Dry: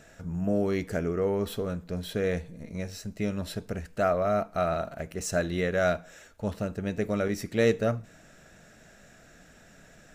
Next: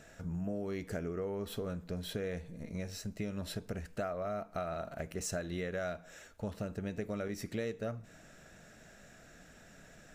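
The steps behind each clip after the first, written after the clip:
downward compressor 6 to 1, threshold −32 dBFS, peak gain reduction 13.5 dB
level −2.5 dB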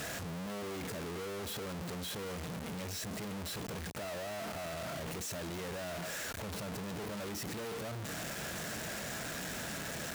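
sign of each sample alone
high-pass filter 68 Hz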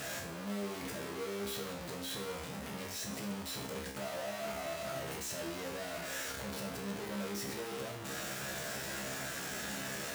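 low-shelf EQ 99 Hz −7.5 dB
tuned comb filter 67 Hz, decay 0.56 s, harmonics all, mix 90%
level +10 dB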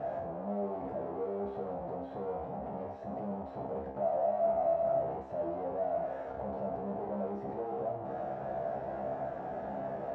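low-pass with resonance 720 Hz, resonance Q 4.9

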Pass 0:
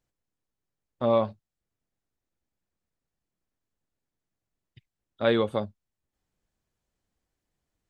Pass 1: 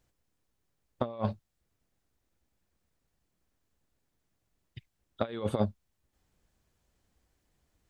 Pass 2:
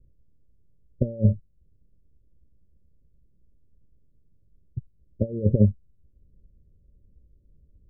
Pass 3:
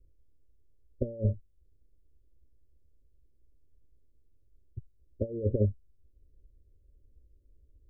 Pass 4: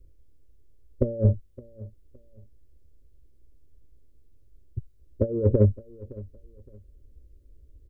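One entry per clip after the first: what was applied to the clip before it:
parametric band 62 Hz +5.5 dB 0.77 octaves; compressor whose output falls as the input rises −30 dBFS, ratio −0.5
Chebyshev low-pass with heavy ripple 590 Hz, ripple 3 dB; spectral tilt −4.5 dB per octave; level +1.5 dB
phaser with its sweep stopped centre 410 Hz, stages 4; level −2.5 dB
in parallel at −11 dB: soft clipping −27.5 dBFS, distortion −9 dB; on the sum: repeating echo 565 ms, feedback 26%, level −20.5 dB; level +6.5 dB

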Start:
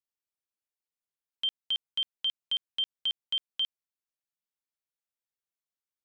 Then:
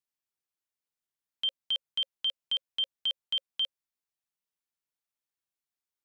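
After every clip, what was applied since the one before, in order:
notch filter 540 Hz, Q 12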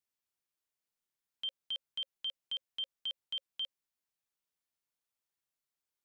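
brickwall limiter −32.5 dBFS, peak gain reduction 8 dB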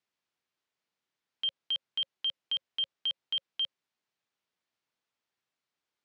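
band-pass filter 110–4,400 Hz
level +7.5 dB

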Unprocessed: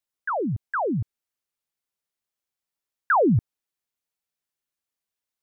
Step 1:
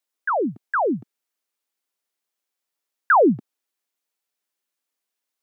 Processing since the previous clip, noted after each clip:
high-pass filter 230 Hz 24 dB per octave
level +4.5 dB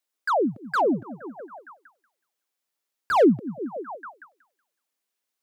echo through a band-pass that steps 186 ms, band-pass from 190 Hz, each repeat 0.7 octaves, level −11 dB
slew-rate limiting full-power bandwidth 110 Hz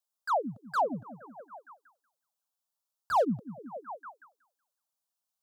phaser with its sweep stopped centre 870 Hz, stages 4
level −3.5 dB

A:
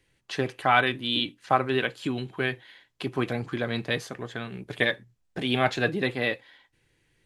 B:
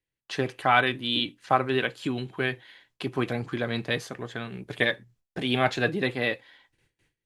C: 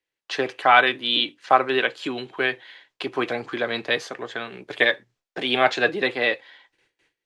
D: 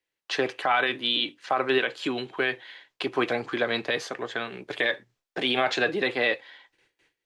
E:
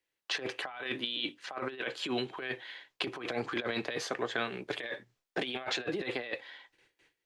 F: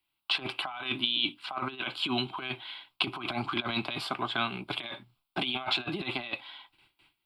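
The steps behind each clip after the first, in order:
noise gate with hold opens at −57 dBFS
three-way crossover with the lows and the highs turned down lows −18 dB, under 310 Hz, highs −15 dB, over 7,200 Hz; level +6 dB
brickwall limiter −13 dBFS, peak gain reduction 11.5 dB
compressor whose output falls as the input rises −29 dBFS, ratio −0.5; level −5 dB
phaser with its sweep stopped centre 1,800 Hz, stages 6; level +7.5 dB

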